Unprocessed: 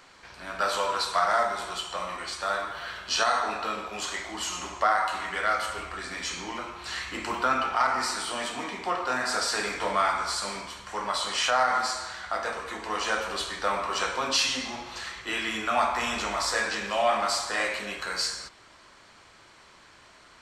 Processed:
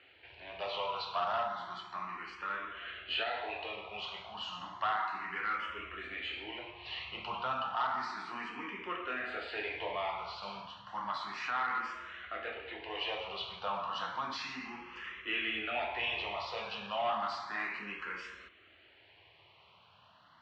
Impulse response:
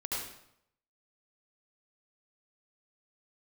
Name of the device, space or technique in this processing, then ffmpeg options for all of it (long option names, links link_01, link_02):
barber-pole phaser into a guitar amplifier: -filter_complex "[0:a]asplit=2[link_01][link_02];[link_02]afreqshift=0.32[link_03];[link_01][link_03]amix=inputs=2:normalize=1,asoftclip=type=tanh:threshold=-20dB,highpass=84,equalizer=frequency=92:width_type=q:width=4:gain=6,equalizer=frequency=260:width_type=q:width=4:gain=-4,equalizer=frequency=540:width_type=q:width=4:gain=-4,equalizer=frequency=1500:width_type=q:width=4:gain=-3,equalizer=frequency=2800:width_type=q:width=4:gain=7,lowpass=frequency=3500:width=0.5412,lowpass=frequency=3500:width=1.3066,asettb=1/sr,asplit=3[link_04][link_05][link_06];[link_04]atrim=end=9.204[link_07];[link_05]atrim=start=9.2:end=10.43,asetpts=PTS-STARTPTS,afade=type=in:duration=0.004:curve=qsin,afade=type=out:start_time=1.226:duration=0.004:curve=qsin,highshelf=frequency=5300:gain=-6[link_08];[link_06]atrim=start=10.426[link_09];[link_07][link_08]acrossfade=duration=0.004:curve1=hsin:curve2=qsin[link_10];[link_10][link_09]acrossfade=duration=0.004:curve1=qsin:curve2=hsin,volume=-4.5dB"